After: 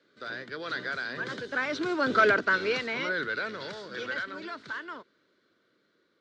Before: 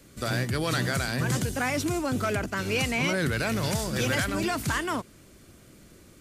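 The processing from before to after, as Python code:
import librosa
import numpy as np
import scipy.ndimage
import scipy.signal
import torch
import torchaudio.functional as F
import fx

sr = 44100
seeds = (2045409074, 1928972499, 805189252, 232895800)

p1 = fx.doppler_pass(x, sr, speed_mps=9, closest_m=2.3, pass_at_s=2.26)
p2 = fx.rider(p1, sr, range_db=4, speed_s=2.0)
p3 = p1 + F.gain(torch.from_numpy(p2), 1.0).numpy()
y = fx.cabinet(p3, sr, low_hz=350.0, low_slope=12, high_hz=4300.0, hz=(440.0, 770.0, 1500.0, 2600.0, 3900.0), db=(4, -8, 8, -7, 5))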